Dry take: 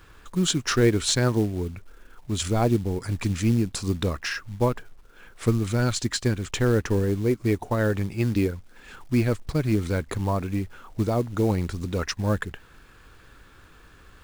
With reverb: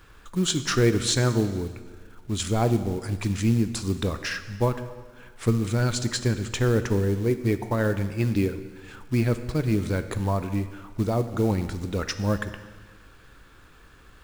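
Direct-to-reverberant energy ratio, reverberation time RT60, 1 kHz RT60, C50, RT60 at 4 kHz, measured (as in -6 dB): 10.0 dB, 1.5 s, 1.5 s, 11.5 dB, 1.4 s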